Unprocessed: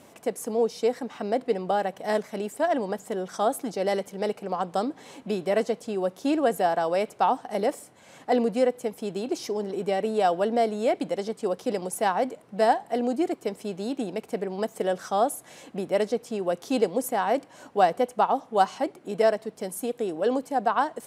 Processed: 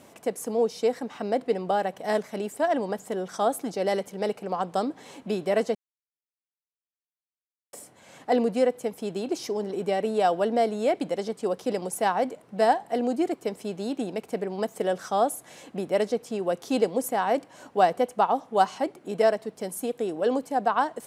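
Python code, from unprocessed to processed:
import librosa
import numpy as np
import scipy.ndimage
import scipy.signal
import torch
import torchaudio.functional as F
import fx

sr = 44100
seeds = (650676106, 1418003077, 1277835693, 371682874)

y = fx.edit(x, sr, fx.silence(start_s=5.75, length_s=1.98), tone=tone)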